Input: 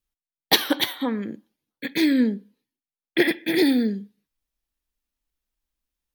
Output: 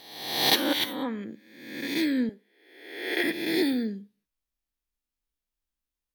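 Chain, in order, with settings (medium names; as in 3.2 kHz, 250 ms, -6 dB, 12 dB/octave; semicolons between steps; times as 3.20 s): reverse spectral sustain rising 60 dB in 0.95 s; 2.29–3.24 s: high-pass 460 Hz 12 dB/octave; trim -7.5 dB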